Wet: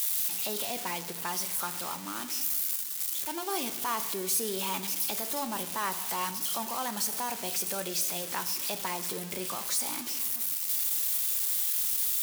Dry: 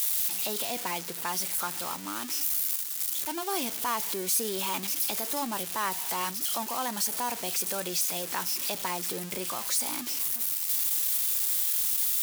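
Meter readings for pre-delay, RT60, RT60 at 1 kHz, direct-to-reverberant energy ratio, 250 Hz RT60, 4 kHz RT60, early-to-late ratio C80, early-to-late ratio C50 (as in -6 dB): 3 ms, 1.2 s, 1.1 s, 10.0 dB, 1.6 s, 0.95 s, 14.5 dB, 13.0 dB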